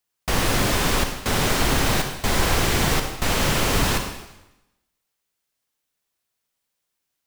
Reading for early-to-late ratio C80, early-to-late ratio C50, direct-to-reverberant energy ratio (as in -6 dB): 7.5 dB, 5.5 dB, 4.5 dB